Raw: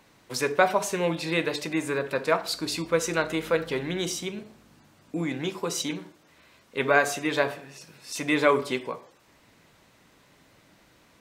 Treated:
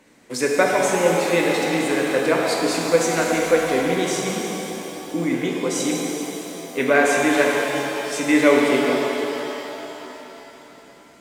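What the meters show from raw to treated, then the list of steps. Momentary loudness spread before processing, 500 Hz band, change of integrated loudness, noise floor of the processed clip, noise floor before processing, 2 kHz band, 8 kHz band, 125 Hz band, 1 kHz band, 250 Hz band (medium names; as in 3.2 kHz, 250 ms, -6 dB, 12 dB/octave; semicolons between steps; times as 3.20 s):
15 LU, +8.0 dB, +6.5 dB, -47 dBFS, -60 dBFS, +6.5 dB, +7.5 dB, +4.0 dB, +6.0 dB, +9.5 dB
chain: graphic EQ 250/500/2000/8000 Hz +11/+8/+8/+10 dB; pitch-shifted reverb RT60 3.5 s, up +7 st, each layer -8 dB, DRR -1.5 dB; trim -5 dB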